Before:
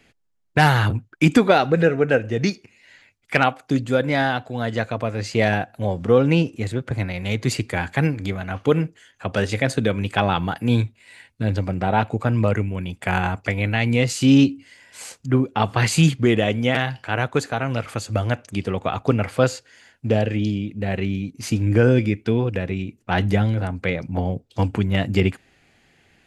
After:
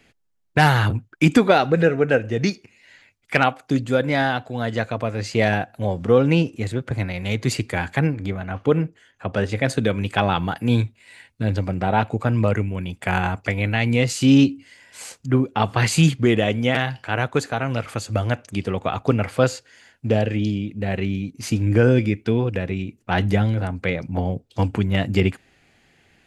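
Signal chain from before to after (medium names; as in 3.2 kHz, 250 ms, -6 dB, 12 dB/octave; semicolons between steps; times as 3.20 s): 7.99–9.63 s: treble shelf 2.8 kHz -9 dB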